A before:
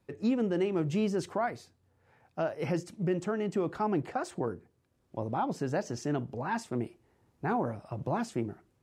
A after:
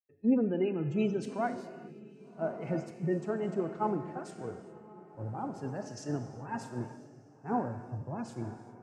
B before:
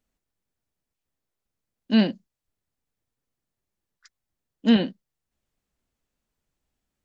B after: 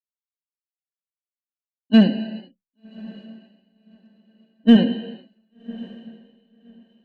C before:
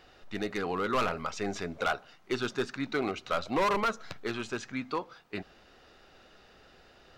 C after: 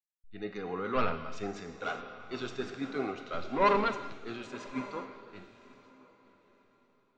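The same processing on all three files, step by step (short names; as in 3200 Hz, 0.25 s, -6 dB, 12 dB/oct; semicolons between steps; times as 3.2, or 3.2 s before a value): spectral gate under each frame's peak -30 dB strong; non-linear reverb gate 0.44 s flat, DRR 8.5 dB; harmonic-percussive split percussive -9 dB; gate with hold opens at -47 dBFS; in parallel at -6 dB: hard clip -18 dBFS; on the sum: diffused feedback echo 1.134 s, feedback 49%, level -10 dB; three-band expander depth 100%; gain -5 dB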